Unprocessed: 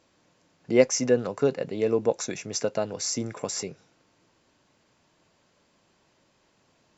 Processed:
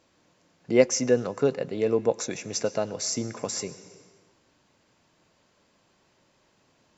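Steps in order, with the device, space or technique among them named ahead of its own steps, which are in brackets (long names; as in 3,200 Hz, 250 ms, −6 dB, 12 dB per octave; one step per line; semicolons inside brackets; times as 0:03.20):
compressed reverb return (on a send at −9 dB: convolution reverb RT60 1.2 s, pre-delay 97 ms + downward compressor, threshold −35 dBFS, peak gain reduction 17 dB)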